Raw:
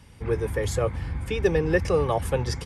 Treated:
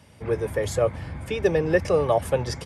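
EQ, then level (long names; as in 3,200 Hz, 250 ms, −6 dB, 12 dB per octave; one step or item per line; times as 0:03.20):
high-pass filter 93 Hz 12 dB per octave
parametric band 620 Hz +11 dB 0.27 octaves
0.0 dB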